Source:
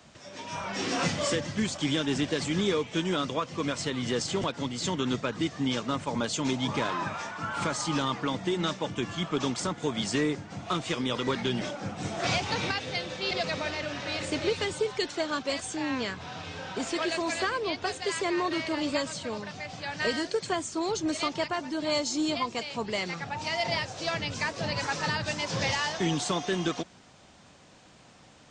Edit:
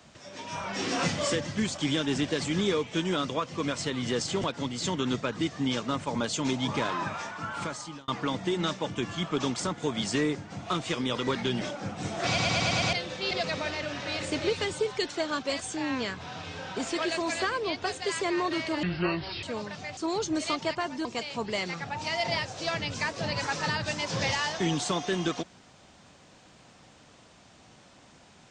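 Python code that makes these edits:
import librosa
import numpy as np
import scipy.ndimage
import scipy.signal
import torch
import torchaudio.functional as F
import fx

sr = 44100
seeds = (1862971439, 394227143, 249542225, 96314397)

y = fx.edit(x, sr, fx.fade_out_span(start_s=7.07, length_s=1.01, curve='qsin'),
    fx.stutter_over(start_s=12.27, slice_s=0.11, count=6),
    fx.speed_span(start_s=18.83, length_s=0.36, speed=0.6),
    fx.cut(start_s=19.73, length_s=0.97),
    fx.cut(start_s=21.78, length_s=0.67), tone=tone)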